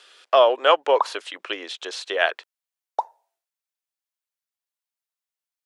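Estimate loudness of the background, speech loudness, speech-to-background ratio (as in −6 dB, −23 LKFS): −30.5 LKFS, −21.0 LKFS, 9.5 dB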